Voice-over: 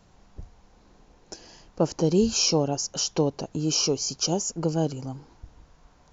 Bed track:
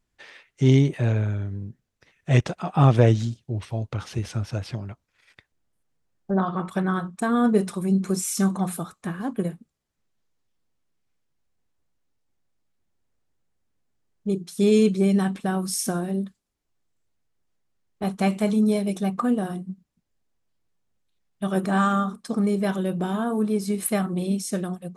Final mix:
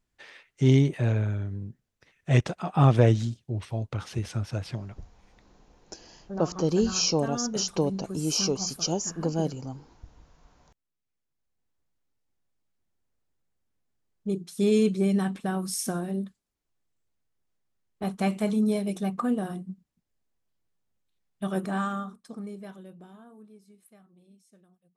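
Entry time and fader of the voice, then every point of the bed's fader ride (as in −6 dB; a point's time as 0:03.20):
4.60 s, −2.5 dB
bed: 0:04.76 −2.5 dB
0:05.27 −12.5 dB
0:10.91 −12.5 dB
0:11.74 −4 dB
0:21.47 −4 dB
0:23.90 −33 dB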